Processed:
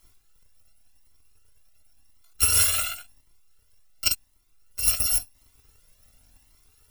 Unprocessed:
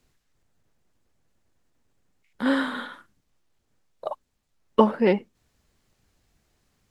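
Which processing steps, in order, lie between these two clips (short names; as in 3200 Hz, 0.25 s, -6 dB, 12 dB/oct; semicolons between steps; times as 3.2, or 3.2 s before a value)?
FFT order left unsorted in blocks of 256 samples; negative-ratio compressor -25 dBFS, ratio -1; cascading flanger rising 0.92 Hz; gain +8.5 dB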